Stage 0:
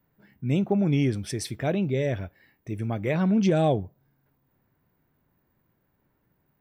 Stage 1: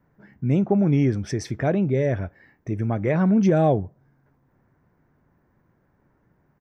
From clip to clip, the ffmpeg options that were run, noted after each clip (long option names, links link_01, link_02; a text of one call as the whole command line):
ffmpeg -i in.wav -filter_complex "[0:a]firequalizer=gain_entry='entry(1700,0);entry(2800,-10);entry(4100,-12);entry(6000,-4);entry(9100,-20)':delay=0.05:min_phase=1,asplit=2[link_01][link_02];[link_02]acompressor=threshold=-32dB:ratio=6,volume=-2dB[link_03];[link_01][link_03]amix=inputs=2:normalize=0,volume=2dB" out.wav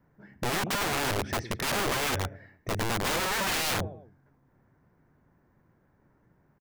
ffmpeg -i in.wav -filter_complex "[0:a]acrossover=split=3700[link_01][link_02];[link_02]acompressor=threshold=-57dB:ratio=4:attack=1:release=60[link_03];[link_01][link_03]amix=inputs=2:normalize=0,aecho=1:1:104|208|312:0.133|0.0547|0.0224,aeval=exprs='(mod(12.6*val(0)+1,2)-1)/12.6':channel_layout=same,volume=-1.5dB" out.wav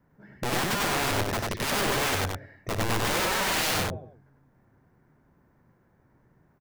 ffmpeg -i in.wav -af "aecho=1:1:58.31|96.21:0.251|0.794" out.wav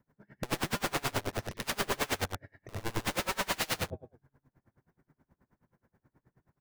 ffmpeg -i in.wav -af "aeval=exprs='val(0)*pow(10,-28*(0.5-0.5*cos(2*PI*9.4*n/s))/20)':channel_layout=same,volume=-1dB" out.wav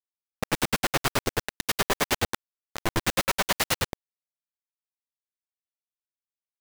ffmpeg -i in.wav -af "acrusher=bits=4:mix=0:aa=0.000001,volume=5.5dB" out.wav